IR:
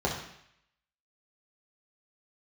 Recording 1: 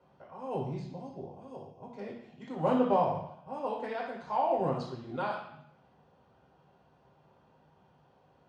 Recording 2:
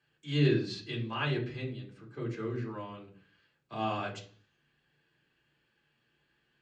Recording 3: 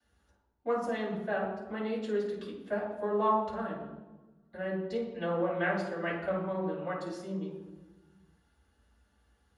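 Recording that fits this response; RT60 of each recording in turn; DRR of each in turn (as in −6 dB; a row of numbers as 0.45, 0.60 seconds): 1; 0.70, 0.50, 1.2 seconds; −3.5, −2.0, −11.0 decibels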